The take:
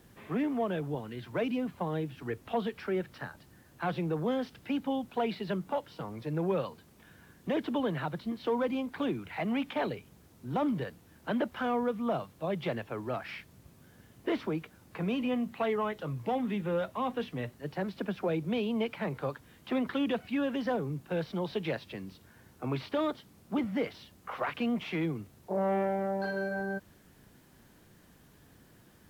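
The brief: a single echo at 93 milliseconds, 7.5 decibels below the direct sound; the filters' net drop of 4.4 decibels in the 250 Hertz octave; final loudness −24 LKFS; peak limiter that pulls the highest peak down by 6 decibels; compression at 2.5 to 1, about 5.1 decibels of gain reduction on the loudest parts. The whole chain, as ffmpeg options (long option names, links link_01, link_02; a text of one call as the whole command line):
ffmpeg -i in.wav -af "equalizer=frequency=250:width_type=o:gain=-5.5,acompressor=threshold=-35dB:ratio=2.5,alimiter=level_in=6.5dB:limit=-24dB:level=0:latency=1,volume=-6.5dB,aecho=1:1:93:0.422,volume=16dB" out.wav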